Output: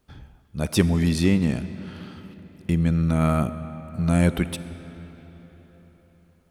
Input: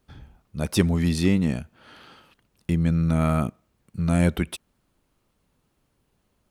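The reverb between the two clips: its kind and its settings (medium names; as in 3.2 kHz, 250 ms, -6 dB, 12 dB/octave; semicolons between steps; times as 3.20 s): algorithmic reverb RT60 4.5 s, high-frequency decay 0.7×, pre-delay 10 ms, DRR 12.5 dB; trim +1 dB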